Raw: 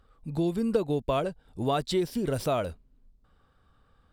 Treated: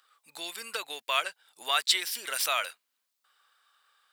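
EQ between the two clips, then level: dynamic bell 2 kHz, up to +7 dB, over -46 dBFS, Q 0.94; high-pass 1.3 kHz 12 dB/octave; tilt EQ +2.5 dB/octave; +4.0 dB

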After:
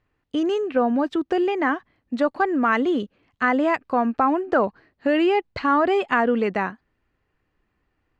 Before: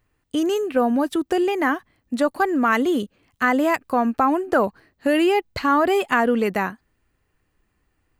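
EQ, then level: distance through air 160 m; bass shelf 140 Hz -5 dB; 0.0 dB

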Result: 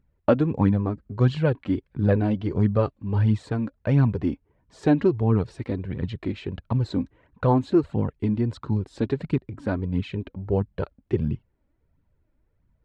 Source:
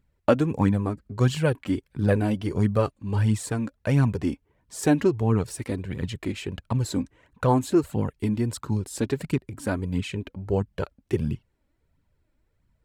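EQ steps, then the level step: dynamic bell 4 kHz, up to +7 dB, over -56 dBFS, Q 2.6; tape spacing loss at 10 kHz 30 dB; +2.0 dB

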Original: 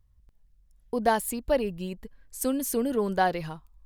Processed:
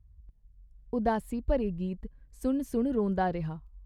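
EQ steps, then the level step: high-pass 41 Hz; RIAA curve playback; -6.5 dB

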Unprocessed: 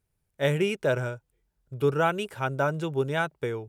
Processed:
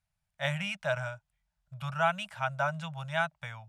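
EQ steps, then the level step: elliptic band-stop 190–630 Hz, stop band 40 dB; distance through air 50 m; bass shelf 380 Hz -6.5 dB; 0.0 dB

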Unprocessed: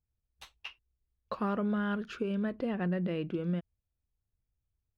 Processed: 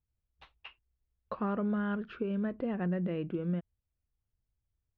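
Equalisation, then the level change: distance through air 360 m; 0.0 dB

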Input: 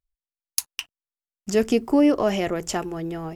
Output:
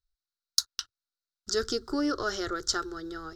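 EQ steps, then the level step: FFT filter 110 Hz 0 dB, 180 Hz -24 dB, 370 Hz -5 dB, 670 Hz -17 dB, 1 kHz -12 dB, 1.4 kHz +9 dB, 2.5 kHz -24 dB, 3.9 kHz +10 dB, 5.5 kHz +5 dB, 10 kHz -12 dB; 0.0 dB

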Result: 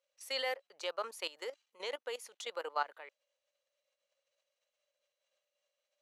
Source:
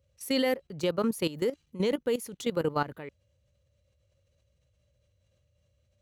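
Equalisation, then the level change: high-pass 620 Hz 24 dB/octave; low-pass 8.1 kHz 12 dB/octave; -3.5 dB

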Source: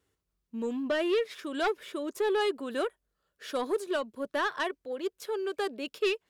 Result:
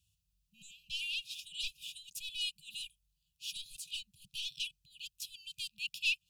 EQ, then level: brick-wall FIR band-stop 180–2400 Hz; +3.0 dB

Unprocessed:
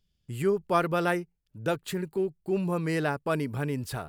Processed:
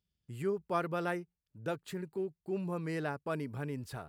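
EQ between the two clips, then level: high-pass 50 Hz; peaking EQ 3.1 kHz -2 dB; treble shelf 7.4 kHz -5.5 dB; -8.0 dB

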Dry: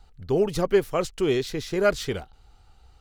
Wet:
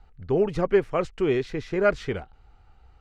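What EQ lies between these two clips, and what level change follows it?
distance through air 80 m; resonant high shelf 2.9 kHz -6 dB, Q 1.5; 0.0 dB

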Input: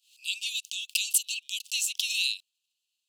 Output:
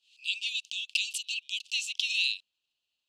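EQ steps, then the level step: tape spacing loss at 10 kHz 24 dB; +8.0 dB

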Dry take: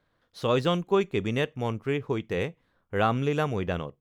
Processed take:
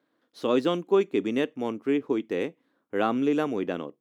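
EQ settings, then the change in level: resonant high-pass 280 Hz, resonance Q 3.5; -3.0 dB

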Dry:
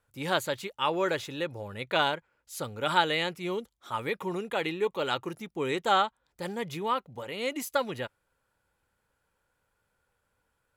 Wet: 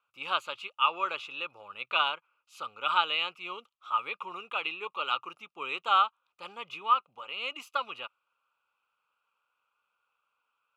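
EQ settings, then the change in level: two resonant band-passes 1.8 kHz, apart 1.1 oct; +8.5 dB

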